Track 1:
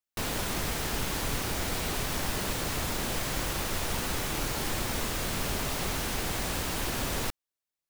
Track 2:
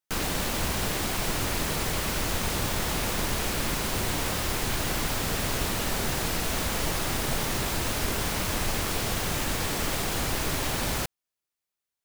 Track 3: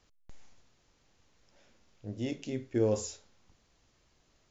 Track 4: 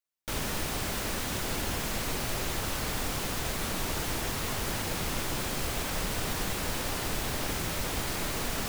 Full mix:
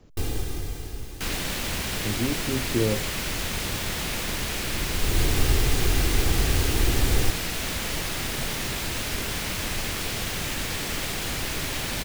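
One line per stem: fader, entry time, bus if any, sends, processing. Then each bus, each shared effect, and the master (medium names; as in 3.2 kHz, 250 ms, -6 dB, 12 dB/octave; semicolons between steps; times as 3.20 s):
+0.5 dB, 0.00 s, no send, bass shelf 400 Hz +11 dB; comb 2.5 ms; auto duck -24 dB, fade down 1.70 s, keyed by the third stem
-1.5 dB, 1.10 s, no send, peaking EQ 2 kHz +7 dB 2.4 oct
+2.5 dB, 0.00 s, no send, tilt shelf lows +7 dB, about 1.1 kHz; three bands compressed up and down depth 40%
-15.5 dB, 0.00 s, no send, none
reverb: none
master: peaking EQ 1.1 kHz -7 dB 2 oct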